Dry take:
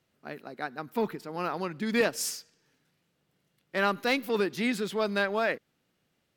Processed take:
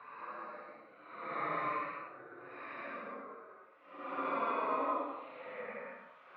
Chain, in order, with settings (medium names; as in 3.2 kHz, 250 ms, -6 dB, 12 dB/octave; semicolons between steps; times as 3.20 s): spectral gate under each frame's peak -15 dB weak; Paulstretch 8×, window 0.10 s, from 0.44 s; cabinet simulation 260–2100 Hz, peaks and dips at 280 Hz +6 dB, 550 Hz +9 dB, 830 Hz -5 dB, 1.2 kHz +9 dB, 1.7 kHz -7 dB; trim +7.5 dB